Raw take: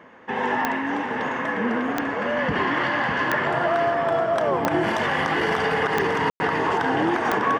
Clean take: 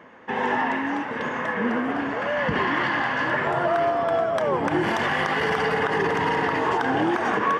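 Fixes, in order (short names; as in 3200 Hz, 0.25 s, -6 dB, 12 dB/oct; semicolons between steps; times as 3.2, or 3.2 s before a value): de-click; room tone fill 6.3–6.4; inverse comb 0.599 s -7 dB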